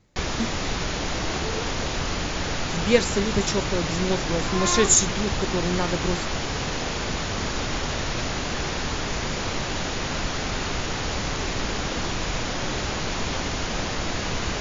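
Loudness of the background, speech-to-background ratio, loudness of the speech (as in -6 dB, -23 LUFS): -27.5 LUFS, 3.0 dB, -24.5 LUFS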